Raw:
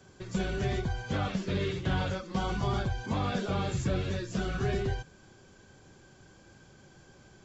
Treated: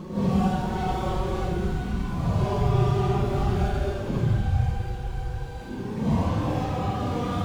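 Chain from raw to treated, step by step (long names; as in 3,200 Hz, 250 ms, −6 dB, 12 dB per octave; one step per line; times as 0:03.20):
running median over 25 samples
low-shelf EQ 490 Hz +3 dB
mains-hum notches 50/100/150/200/250/300 Hz
extreme stretch with random phases 7.7×, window 0.05 s, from 0:02.32
on a send: delay with a high-pass on its return 554 ms, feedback 62%, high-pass 1,400 Hz, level −10 dB
on the sum: level +4.5 dB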